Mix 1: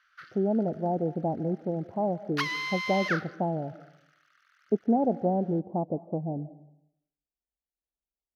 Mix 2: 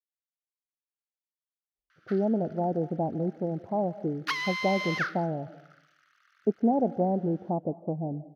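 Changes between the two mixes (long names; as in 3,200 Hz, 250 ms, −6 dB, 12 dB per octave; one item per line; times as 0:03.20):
speech: entry +1.75 s
background: entry +1.90 s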